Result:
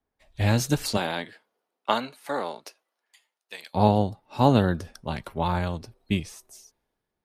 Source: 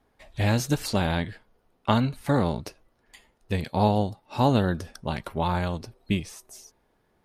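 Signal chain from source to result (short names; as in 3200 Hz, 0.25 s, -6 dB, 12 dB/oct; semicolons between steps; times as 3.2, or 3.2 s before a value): 0.96–3.73 HPF 280 Hz -> 900 Hz 12 dB/oct; three-band expander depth 40%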